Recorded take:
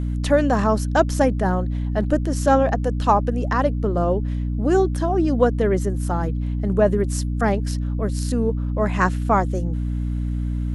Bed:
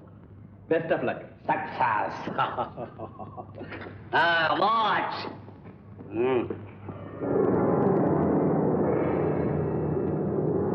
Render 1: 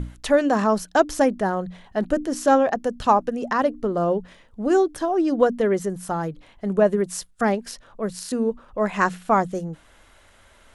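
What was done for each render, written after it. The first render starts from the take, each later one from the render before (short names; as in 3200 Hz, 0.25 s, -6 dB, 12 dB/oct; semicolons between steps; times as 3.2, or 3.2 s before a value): notches 60/120/180/240/300 Hz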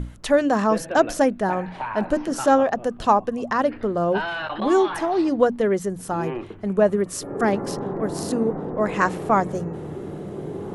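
add bed -5.5 dB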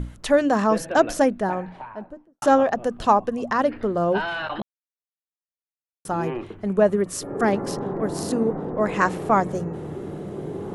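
1.18–2.42 studio fade out; 4.62–6.05 mute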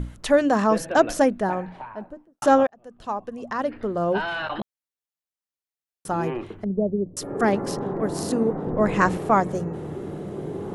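2.67–4.38 fade in; 6.64–7.17 Gaussian blur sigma 17 samples; 8.66–9.17 low shelf 170 Hz +9.5 dB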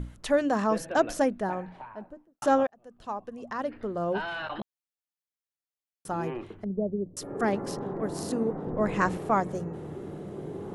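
gain -6 dB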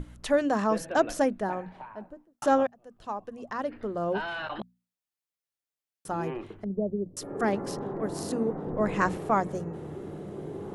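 notches 60/120/180/240 Hz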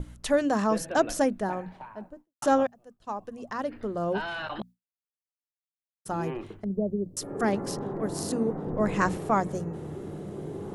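expander -44 dBFS; tone controls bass +3 dB, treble +5 dB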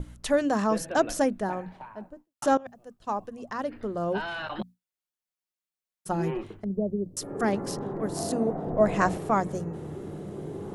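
2.57–3.27 negative-ratio compressor -31 dBFS, ratio -0.5; 4.57–6.43 comb 5.5 ms; 8.17–9.18 bell 680 Hz +12 dB 0.29 oct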